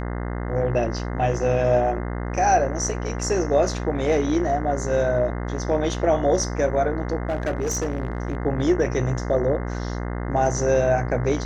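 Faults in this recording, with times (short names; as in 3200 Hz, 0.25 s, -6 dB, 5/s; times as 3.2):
buzz 60 Hz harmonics 35 -28 dBFS
7.27–8.37 clipped -20 dBFS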